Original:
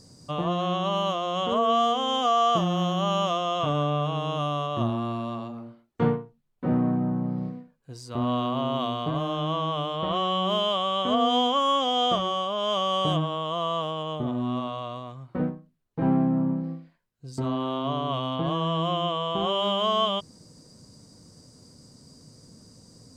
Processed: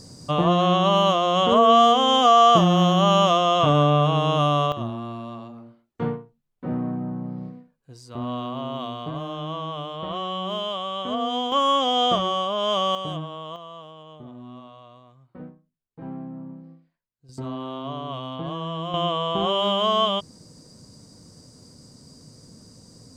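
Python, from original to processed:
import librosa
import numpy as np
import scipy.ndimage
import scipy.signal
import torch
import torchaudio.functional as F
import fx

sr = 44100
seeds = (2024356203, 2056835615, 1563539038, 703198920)

y = fx.gain(x, sr, db=fx.steps((0.0, 7.5), (4.72, -3.5), (11.52, 3.0), (12.95, -6.0), (13.56, -13.0), (17.29, -4.0), (18.94, 3.0)))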